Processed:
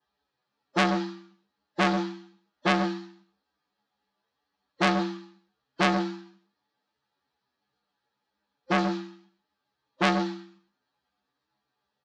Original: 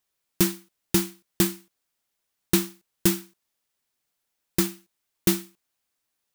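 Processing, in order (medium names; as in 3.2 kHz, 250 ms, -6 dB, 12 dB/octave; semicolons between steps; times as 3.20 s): time stretch by phase-locked vocoder 1.9×; cabinet simulation 160–3800 Hz, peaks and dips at 340 Hz -3 dB, 510 Hz -4 dB, 790 Hz +6 dB; delay 130 ms -10 dB; reverberation RT60 0.20 s, pre-delay 3 ms, DRR -6 dB; transformer saturation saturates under 2.6 kHz; trim -5 dB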